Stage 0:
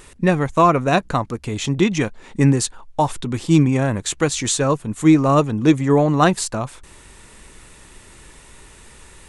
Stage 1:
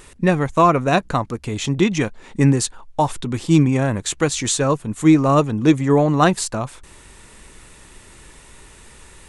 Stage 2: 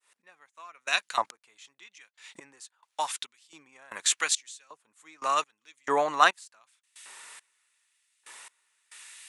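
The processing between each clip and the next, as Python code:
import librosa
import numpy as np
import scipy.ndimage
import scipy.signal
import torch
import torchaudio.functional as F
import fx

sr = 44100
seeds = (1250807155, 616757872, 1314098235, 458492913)

y1 = x
y2 = fx.fade_in_head(y1, sr, length_s=0.68)
y2 = fx.step_gate(y2, sr, bpm=69, pattern='x...xx....x..x', floor_db=-24.0, edge_ms=4.5)
y2 = fx.filter_lfo_highpass(y2, sr, shape='saw_up', hz=0.85, low_hz=840.0, high_hz=2800.0, q=0.89)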